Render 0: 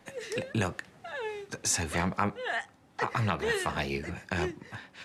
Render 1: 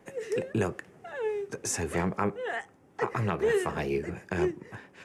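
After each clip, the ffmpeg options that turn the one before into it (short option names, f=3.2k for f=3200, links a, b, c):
-af "equalizer=f=160:t=o:w=0.67:g=3,equalizer=f=400:t=o:w=0.67:g=10,equalizer=f=4k:t=o:w=0.67:g=-10,volume=-2dB"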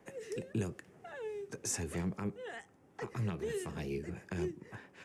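-filter_complex "[0:a]acrossover=split=330|3000[a][b][c];[b]acompressor=threshold=-41dB:ratio=6[d];[a][d][c]amix=inputs=3:normalize=0,volume=-4.5dB"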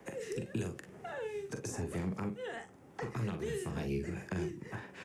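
-filter_complex "[0:a]acrossover=split=220|1200[a][b][c];[a]acompressor=threshold=-45dB:ratio=4[d];[b]acompressor=threshold=-47dB:ratio=4[e];[c]acompressor=threshold=-55dB:ratio=4[f];[d][e][f]amix=inputs=3:normalize=0,aecho=1:1:43|58:0.422|0.15,volume=6.5dB"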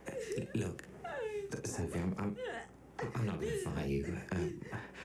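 -af "aeval=exprs='val(0)+0.000708*(sin(2*PI*60*n/s)+sin(2*PI*2*60*n/s)/2+sin(2*PI*3*60*n/s)/3+sin(2*PI*4*60*n/s)/4+sin(2*PI*5*60*n/s)/5)':c=same"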